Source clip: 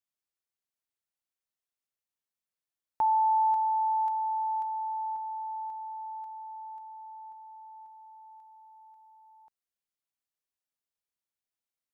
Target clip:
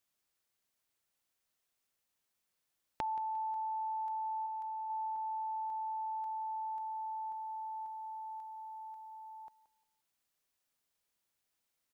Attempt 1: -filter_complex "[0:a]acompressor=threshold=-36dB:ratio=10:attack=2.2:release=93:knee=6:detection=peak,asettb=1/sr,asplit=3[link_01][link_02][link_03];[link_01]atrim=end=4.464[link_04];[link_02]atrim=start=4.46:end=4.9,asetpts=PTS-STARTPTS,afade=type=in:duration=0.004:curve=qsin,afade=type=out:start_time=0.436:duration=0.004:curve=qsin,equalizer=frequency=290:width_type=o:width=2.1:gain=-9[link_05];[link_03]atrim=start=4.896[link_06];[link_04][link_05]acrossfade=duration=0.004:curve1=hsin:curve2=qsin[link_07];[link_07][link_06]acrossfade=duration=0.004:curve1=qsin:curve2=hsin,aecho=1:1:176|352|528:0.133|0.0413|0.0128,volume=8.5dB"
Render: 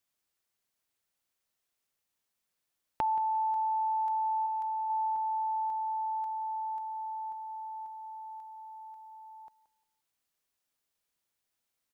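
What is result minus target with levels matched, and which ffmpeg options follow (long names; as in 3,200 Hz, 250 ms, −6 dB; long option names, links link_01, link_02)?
downward compressor: peak gain reduction −7 dB
-filter_complex "[0:a]acompressor=threshold=-44dB:ratio=10:attack=2.2:release=93:knee=6:detection=peak,asettb=1/sr,asplit=3[link_01][link_02][link_03];[link_01]atrim=end=4.464[link_04];[link_02]atrim=start=4.46:end=4.9,asetpts=PTS-STARTPTS,afade=type=in:duration=0.004:curve=qsin,afade=type=out:start_time=0.436:duration=0.004:curve=qsin,equalizer=frequency=290:width_type=o:width=2.1:gain=-9[link_05];[link_03]atrim=start=4.896[link_06];[link_04][link_05]acrossfade=duration=0.004:curve1=hsin:curve2=qsin[link_07];[link_07][link_06]acrossfade=duration=0.004:curve1=qsin:curve2=hsin,aecho=1:1:176|352|528:0.133|0.0413|0.0128,volume=8.5dB"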